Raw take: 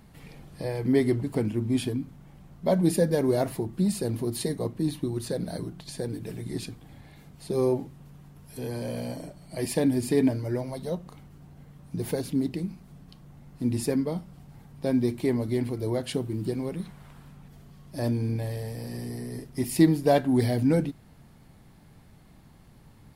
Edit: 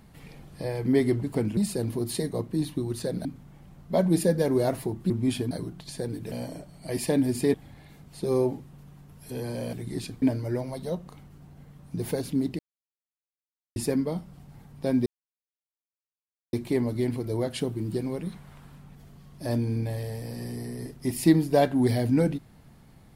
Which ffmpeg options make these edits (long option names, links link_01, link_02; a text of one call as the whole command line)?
ffmpeg -i in.wav -filter_complex "[0:a]asplit=12[link_01][link_02][link_03][link_04][link_05][link_06][link_07][link_08][link_09][link_10][link_11][link_12];[link_01]atrim=end=1.572[link_13];[link_02]atrim=start=3.828:end=5.512[link_14];[link_03]atrim=start=1.978:end=3.832[link_15];[link_04]atrim=start=1.568:end=1.982[link_16];[link_05]atrim=start=5.508:end=6.322[link_17];[link_06]atrim=start=8.998:end=10.222[link_18];[link_07]atrim=start=6.808:end=9.002[link_19];[link_08]atrim=start=6.318:end=6.812[link_20];[link_09]atrim=start=10.218:end=12.59,asetpts=PTS-STARTPTS,afade=type=out:start_time=2.368:duration=0.004:curve=hsin[link_21];[link_10]atrim=start=12.59:end=13.76,asetpts=PTS-STARTPTS,volume=0[link_22];[link_11]atrim=start=13.76:end=15.06,asetpts=PTS-STARTPTS,afade=type=in:duration=0.004:curve=hsin,afade=type=out:start_time=1.296:duration=0.004:curve=hsin,apad=pad_dur=1.47[link_23];[link_12]atrim=start=15.06,asetpts=PTS-STARTPTS,afade=type=in:duration=0.004:curve=hsin[link_24];[link_13][link_14]acrossfade=duration=0.004:curve1=hsin:curve2=hsin[link_25];[link_25][link_15]acrossfade=duration=0.004:curve1=hsin:curve2=hsin[link_26];[link_26][link_16]acrossfade=duration=0.004:curve1=hsin:curve2=hsin[link_27];[link_27][link_17]acrossfade=duration=0.004:curve1=hsin:curve2=hsin[link_28];[link_28][link_18]acrossfade=duration=0.004:curve1=hsin:curve2=hsin[link_29];[link_29][link_19]acrossfade=duration=0.004:curve1=hsin:curve2=hsin[link_30];[link_30][link_20]acrossfade=duration=0.004:curve1=hsin:curve2=hsin[link_31];[link_21][link_22][link_23][link_24]concat=n=4:v=0:a=1[link_32];[link_31][link_32]acrossfade=duration=0.004:curve1=hsin:curve2=hsin" out.wav